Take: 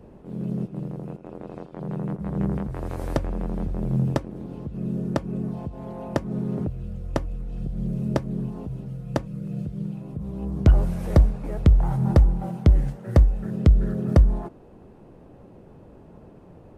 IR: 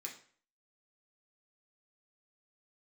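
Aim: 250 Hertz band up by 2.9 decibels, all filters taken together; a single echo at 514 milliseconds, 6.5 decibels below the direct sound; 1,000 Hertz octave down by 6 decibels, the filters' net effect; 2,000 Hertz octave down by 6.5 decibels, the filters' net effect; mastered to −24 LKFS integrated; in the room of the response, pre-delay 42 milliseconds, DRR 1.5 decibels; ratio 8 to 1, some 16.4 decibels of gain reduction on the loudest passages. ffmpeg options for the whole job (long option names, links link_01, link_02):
-filter_complex "[0:a]equalizer=frequency=250:width_type=o:gain=4.5,equalizer=frequency=1000:width_type=o:gain=-7.5,equalizer=frequency=2000:width_type=o:gain=-5.5,acompressor=threshold=-27dB:ratio=8,aecho=1:1:514:0.473,asplit=2[link_01][link_02];[1:a]atrim=start_sample=2205,adelay=42[link_03];[link_02][link_03]afir=irnorm=-1:irlink=0,volume=1dB[link_04];[link_01][link_04]amix=inputs=2:normalize=0,volume=6.5dB"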